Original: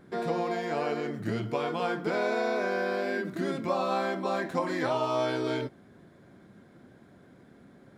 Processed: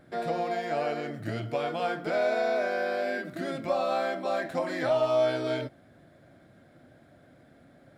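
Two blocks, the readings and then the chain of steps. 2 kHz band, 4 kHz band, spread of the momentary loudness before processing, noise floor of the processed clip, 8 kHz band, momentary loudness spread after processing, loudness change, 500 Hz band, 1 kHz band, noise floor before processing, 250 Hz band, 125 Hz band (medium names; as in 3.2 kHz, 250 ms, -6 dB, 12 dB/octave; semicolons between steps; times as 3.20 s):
0.0 dB, 0.0 dB, 4 LU, -58 dBFS, no reading, 9 LU, +1.0 dB, +2.0 dB, 0.0 dB, -56 dBFS, -3.5 dB, -1.5 dB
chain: graphic EQ with 31 bands 200 Hz -10 dB, 400 Hz -9 dB, 630 Hz +7 dB, 1 kHz -8 dB, 6.3 kHz -4 dB; in parallel at -11.5 dB: one-sided clip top -23.5 dBFS; on the sum: trim -1.5 dB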